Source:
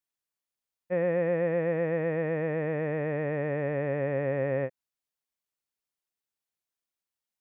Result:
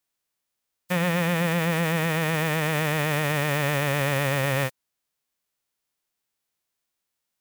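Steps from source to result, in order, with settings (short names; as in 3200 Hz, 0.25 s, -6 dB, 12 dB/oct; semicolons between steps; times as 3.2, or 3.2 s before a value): spectral whitening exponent 0.3; limiter -22.5 dBFS, peak gain reduction 7 dB; gain +8.5 dB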